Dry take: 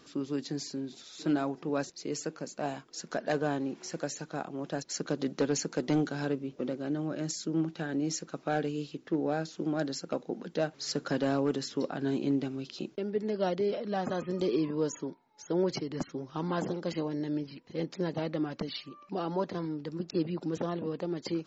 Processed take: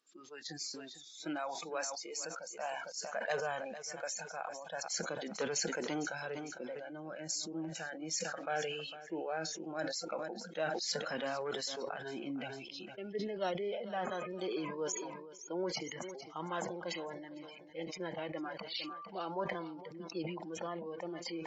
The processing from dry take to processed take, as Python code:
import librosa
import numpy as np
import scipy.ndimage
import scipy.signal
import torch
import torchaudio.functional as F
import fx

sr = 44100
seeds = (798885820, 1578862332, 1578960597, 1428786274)

p1 = fx.highpass(x, sr, hz=860.0, slope=6)
p2 = fx.noise_reduce_blind(p1, sr, reduce_db=21)
p3 = p2 + fx.echo_feedback(p2, sr, ms=454, feedback_pct=26, wet_db=-18.0, dry=0)
p4 = fx.sustainer(p3, sr, db_per_s=36.0)
y = p4 * 10.0 ** (-1.0 / 20.0)